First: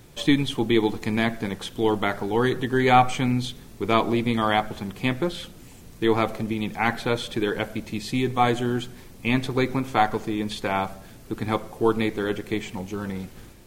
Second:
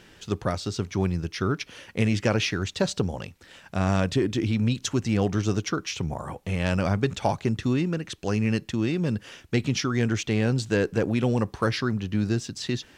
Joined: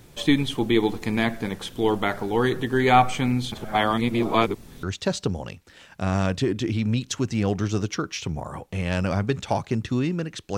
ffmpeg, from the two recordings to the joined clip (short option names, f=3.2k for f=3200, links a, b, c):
-filter_complex "[0:a]apad=whole_dur=10.57,atrim=end=10.57,asplit=2[a][b];[a]atrim=end=3.522[c];[b]atrim=start=3.518:end=4.832,asetpts=PTS-STARTPTS,areverse[d];[1:a]atrim=start=2.568:end=8.31[e];[c][d]acrossfade=d=0.004:c1=hsin:c2=hsin[f];[f][e]acrossfade=d=0.004:c1=hsin:c2=hsin"